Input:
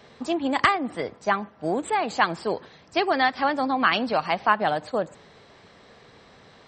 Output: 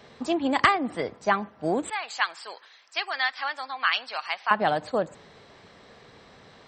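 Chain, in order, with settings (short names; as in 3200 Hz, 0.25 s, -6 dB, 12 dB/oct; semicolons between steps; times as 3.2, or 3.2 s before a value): 1.9–4.51 HPF 1400 Hz 12 dB/oct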